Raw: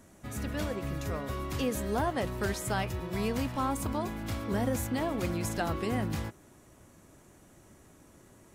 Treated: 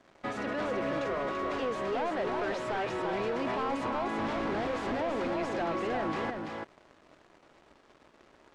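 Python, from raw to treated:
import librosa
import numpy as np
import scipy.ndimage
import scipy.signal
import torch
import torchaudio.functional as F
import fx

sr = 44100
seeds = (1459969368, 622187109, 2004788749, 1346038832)

p1 = fx.cvsd(x, sr, bps=64000)
p2 = scipy.signal.sosfilt(scipy.signal.butter(2, 460.0, 'highpass', fs=sr, output='sos'), p1)
p3 = fx.leveller(p2, sr, passes=5)
p4 = fx.over_compress(p3, sr, threshold_db=-29.0, ratio=-0.5)
p5 = p3 + F.gain(torch.from_numpy(p4), -3.0).numpy()
p6 = fx.schmitt(p5, sr, flips_db=-30.0, at=(4.18, 5.01))
p7 = fx.spacing_loss(p6, sr, db_at_10k=32)
p8 = p7 + fx.echo_single(p7, sr, ms=336, db=-4.5, dry=0)
y = F.gain(torch.from_numpy(p8), -8.5).numpy()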